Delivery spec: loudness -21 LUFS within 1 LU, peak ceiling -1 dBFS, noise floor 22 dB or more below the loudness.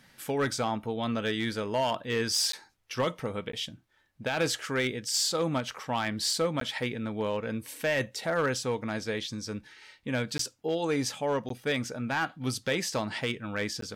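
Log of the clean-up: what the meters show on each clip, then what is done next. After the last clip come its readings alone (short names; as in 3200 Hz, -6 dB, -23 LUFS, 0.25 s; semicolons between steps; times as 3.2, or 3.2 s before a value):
clipped 0.3%; flat tops at -20.5 dBFS; dropouts 6; longest dropout 13 ms; loudness -30.5 LUFS; peak -20.5 dBFS; loudness target -21.0 LUFS
-> clip repair -20.5 dBFS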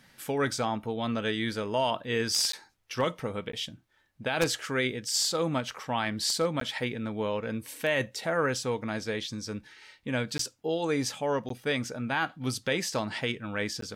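clipped 0.0%; dropouts 6; longest dropout 13 ms
-> interpolate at 2.52/3.52/6.6/10.38/11.49/13.81, 13 ms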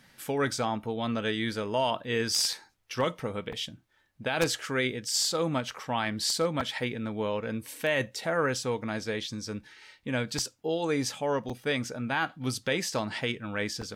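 dropouts 0; loudness -30.5 LUFS; peak -11.5 dBFS; loudness target -21.0 LUFS
-> gain +9.5 dB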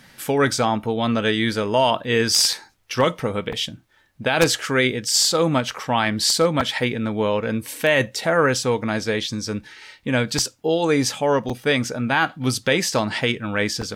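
loudness -21.0 LUFS; peak -2.0 dBFS; noise floor -57 dBFS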